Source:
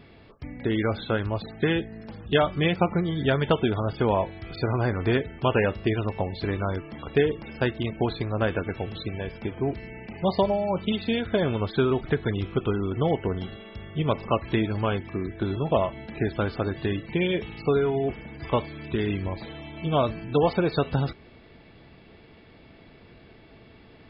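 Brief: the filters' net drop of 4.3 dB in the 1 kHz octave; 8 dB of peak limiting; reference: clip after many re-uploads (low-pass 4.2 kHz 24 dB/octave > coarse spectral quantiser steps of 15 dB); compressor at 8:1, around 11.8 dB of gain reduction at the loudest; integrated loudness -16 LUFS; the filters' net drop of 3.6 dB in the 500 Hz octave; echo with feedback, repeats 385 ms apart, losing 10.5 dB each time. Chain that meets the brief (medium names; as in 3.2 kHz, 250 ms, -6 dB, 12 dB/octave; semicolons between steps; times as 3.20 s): peaking EQ 500 Hz -3.5 dB; peaking EQ 1 kHz -4.5 dB; compression 8:1, threshold -32 dBFS; peak limiter -27.5 dBFS; low-pass 4.2 kHz 24 dB/octave; feedback delay 385 ms, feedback 30%, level -10.5 dB; coarse spectral quantiser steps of 15 dB; trim +23 dB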